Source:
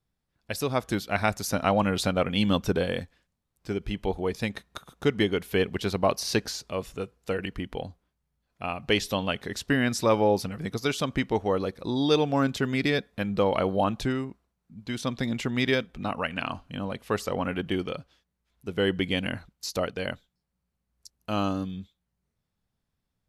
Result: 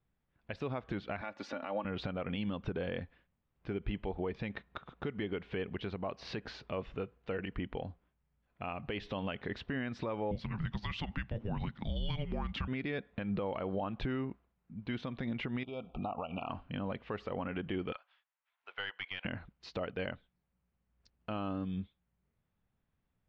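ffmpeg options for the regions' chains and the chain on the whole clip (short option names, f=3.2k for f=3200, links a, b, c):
-filter_complex "[0:a]asettb=1/sr,asplit=3[a][b][c];[a]atrim=end=1.214[d];[b]atrim=start=1.21:end=1.85,asetpts=PTS-STARTPTS,afade=t=in:d=0.004:c=qsin,afade=t=out:st=0.636:d=0.004:c=qsin,highpass=270,aecho=1:1:3.5:0.56,atrim=end_sample=28224[e];[c]atrim=start=1.846[f];[d][e]acrossfade=d=0.004:c1=hsin:c2=qsin[g];[g][f]acrossfade=d=0.004:c1=qsin:c2=hsin,asettb=1/sr,asplit=3[h][i][j];[h]atrim=end=10.314[k];[i]atrim=start=10.31:end=12.68,asetpts=PTS-STARTPTS,afade=t=in:d=0.004:c=qsin,afade=t=out:st=2.366:d=0.004:c=qsin,highshelf=f=4k:g=8.5,afreqshift=-320[l];[j]atrim=start=12.676[m];[k][l]acrossfade=d=0.004:c1=hsin:c2=qsin[n];[n][m]acrossfade=d=0.004:c1=qsin:c2=hsin,asettb=1/sr,asplit=3[o][p][q];[o]atrim=end=15.634[r];[p]atrim=start=15.63:end=16.5,asetpts=PTS-STARTPTS,afade=t=in:d=0.004:c=qsin,afade=t=out:st=0.866:d=0.004:c=qsin,equalizer=f=730:w=3:g=12.5,acompressor=threshold=-33dB:ratio=16:attack=3.2:release=140:knee=1:detection=peak,asuperstop=centerf=1800:order=20:qfactor=1.9[s];[q]atrim=start=16.496[t];[r][s]acrossfade=d=0.004:c1=hsin:c2=qsin[u];[u][t]acrossfade=d=0.004:c1=qsin:c2=hsin,asettb=1/sr,asplit=3[v][w][x];[v]atrim=end=17.924[y];[w]atrim=start=17.92:end=19.25,asetpts=PTS-STARTPTS,afade=t=in:d=0.004:c=qsin,afade=t=out:st=1.326:d=0.004:c=qsin,highpass=f=820:w=0.5412,highpass=f=820:w=1.3066,aeval=exprs='(tanh(8.91*val(0)+0.5)-tanh(0.5))/8.91':c=same[z];[x]atrim=start=19.246[aa];[y][z]acrossfade=d=0.004:c1=hsin:c2=qsin[ab];[ab][aa]acrossfade=d=0.004:c1=qsin:c2=hsin,lowpass=f=3k:w=0.5412,lowpass=f=3k:w=1.3066,acompressor=threshold=-26dB:ratio=4,alimiter=level_in=2.5dB:limit=-24dB:level=0:latency=1:release=154,volume=-2.5dB"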